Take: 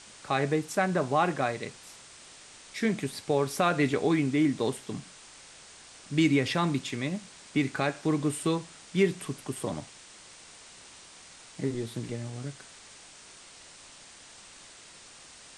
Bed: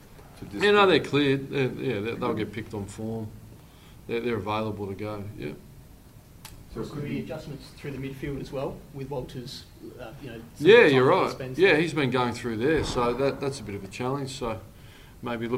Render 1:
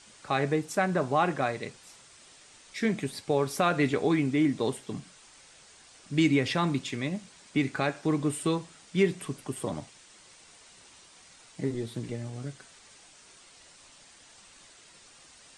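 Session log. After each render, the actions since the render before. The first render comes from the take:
broadband denoise 6 dB, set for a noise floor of −51 dBFS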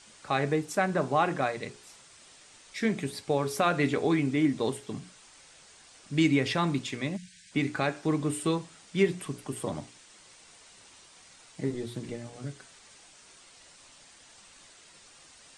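mains-hum notches 60/120/180/240/300/360/420 Hz
0:07.17–0:07.52: time-frequency box erased 210–1,500 Hz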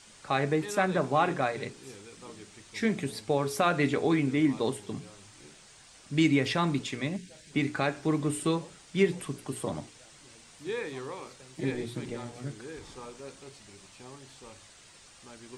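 mix in bed −19.5 dB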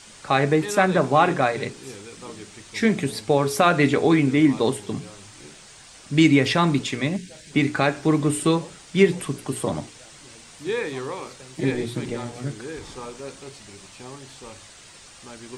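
level +8 dB

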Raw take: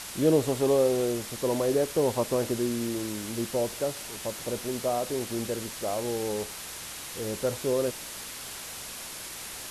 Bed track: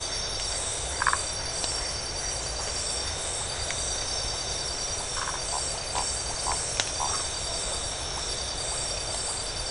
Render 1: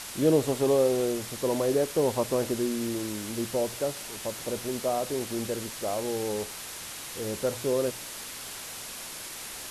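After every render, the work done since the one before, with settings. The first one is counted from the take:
hum removal 60 Hz, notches 3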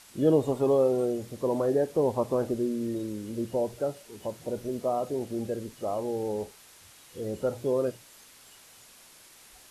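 noise reduction from a noise print 14 dB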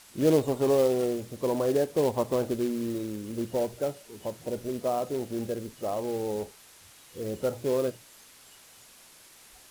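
floating-point word with a short mantissa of 2 bits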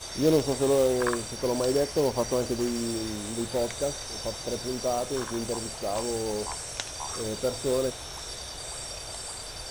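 mix in bed track −7 dB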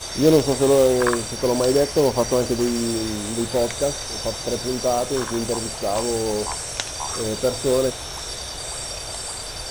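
level +7 dB

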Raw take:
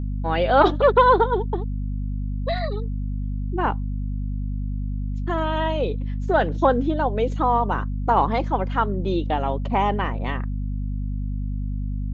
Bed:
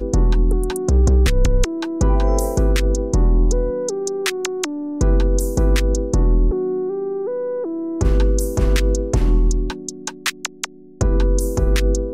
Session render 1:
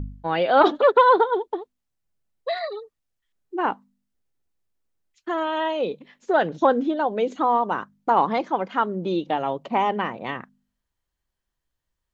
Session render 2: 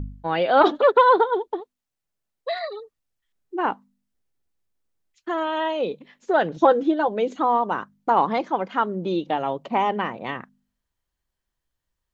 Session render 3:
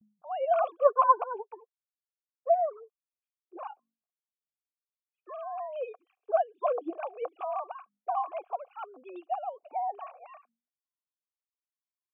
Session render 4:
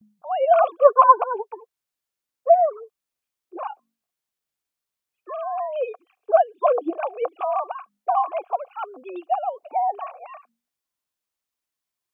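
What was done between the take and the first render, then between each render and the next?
hum removal 50 Hz, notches 5
0:01.60–0:02.80: low-shelf EQ 230 Hz −8 dB; 0:06.56–0:07.08: comb filter 6 ms
three sine waves on the formant tracks; formant filter a
level +9.5 dB; brickwall limiter −2 dBFS, peak gain reduction 2 dB

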